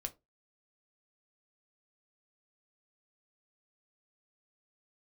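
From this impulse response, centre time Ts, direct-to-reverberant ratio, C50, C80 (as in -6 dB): 4 ms, 5.5 dB, 20.5 dB, 28.5 dB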